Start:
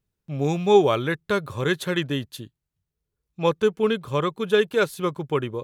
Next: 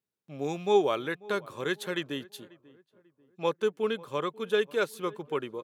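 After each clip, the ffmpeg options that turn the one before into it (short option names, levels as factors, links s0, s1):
-filter_complex "[0:a]highpass=240,asplit=2[s0][s1];[s1]adelay=541,lowpass=f=1300:p=1,volume=0.0891,asplit=2[s2][s3];[s3]adelay=541,lowpass=f=1300:p=1,volume=0.42,asplit=2[s4][s5];[s5]adelay=541,lowpass=f=1300:p=1,volume=0.42[s6];[s0][s2][s4][s6]amix=inputs=4:normalize=0,volume=0.473"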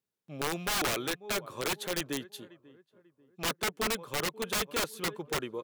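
-af "aeval=exprs='(mod(16.8*val(0)+1,2)-1)/16.8':c=same"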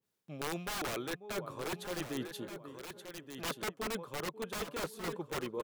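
-af "areverse,acompressor=threshold=0.00891:ratio=5,areverse,aecho=1:1:1176:0.335,adynamicequalizer=threshold=0.00126:dfrequency=1700:dqfactor=0.7:tfrequency=1700:tqfactor=0.7:attack=5:release=100:ratio=0.375:range=3:mode=cutabove:tftype=highshelf,volume=1.88"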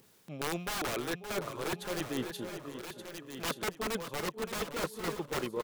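-af "acompressor=mode=upward:threshold=0.00355:ratio=2.5,aeval=exprs='0.0531*(cos(1*acos(clip(val(0)/0.0531,-1,1)))-cos(1*PI/2))+0.00596*(cos(3*acos(clip(val(0)/0.0531,-1,1)))-cos(3*PI/2))':c=same,aecho=1:1:569|1138|1707:0.282|0.0676|0.0162,volume=1.88"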